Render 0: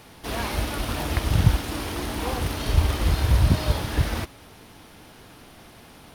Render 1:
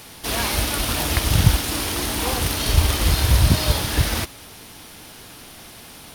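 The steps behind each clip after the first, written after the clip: high shelf 2900 Hz +11 dB; gain +2.5 dB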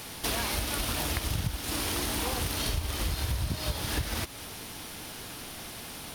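compressor 12:1, threshold -27 dBFS, peak gain reduction 19.5 dB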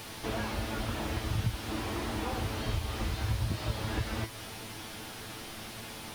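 resonator 110 Hz, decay 0.17 s, harmonics all, mix 80%; slew limiter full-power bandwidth 17 Hz; gain +6 dB

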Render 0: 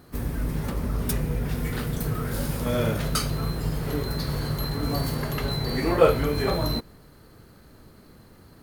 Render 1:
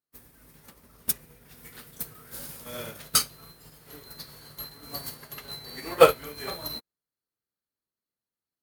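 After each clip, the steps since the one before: tilt +3 dB/oct; maximiser +5.5 dB; upward expander 2.5:1, over -42 dBFS; gain +1.5 dB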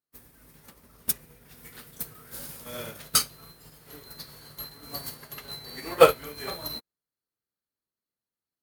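nothing audible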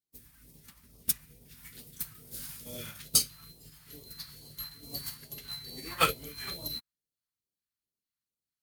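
phaser stages 2, 2.3 Hz, lowest notch 410–1500 Hz; gain -1.5 dB

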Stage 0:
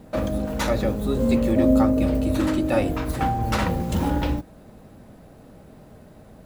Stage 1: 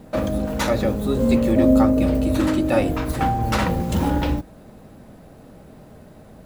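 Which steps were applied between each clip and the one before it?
notches 50/100 Hz; gain +2.5 dB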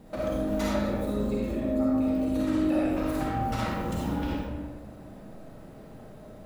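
compressor, threshold -24 dBFS, peak gain reduction 12.5 dB; digital reverb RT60 1.5 s, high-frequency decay 0.5×, pre-delay 15 ms, DRR -5.5 dB; gain -8.5 dB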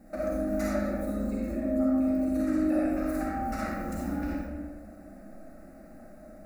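fixed phaser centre 650 Hz, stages 8

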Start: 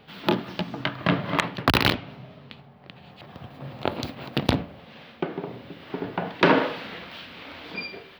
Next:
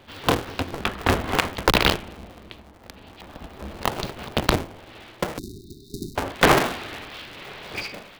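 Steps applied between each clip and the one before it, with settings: cycle switcher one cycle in 2, inverted; spectral delete 5.38–6.16, 420–3600 Hz; gain +2 dB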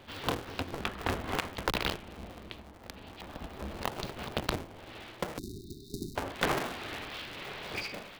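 compressor 2:1, threshold -33 dBFS, peak gain reduction 12 dB; gain -2.5 dB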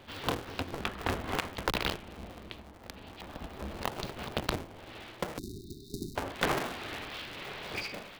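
nothing audible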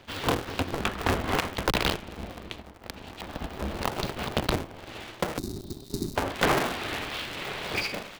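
sample leveller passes 2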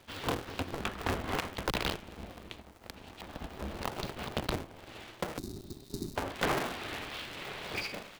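crackle 570/s -46 dBFS; gain -7 dB

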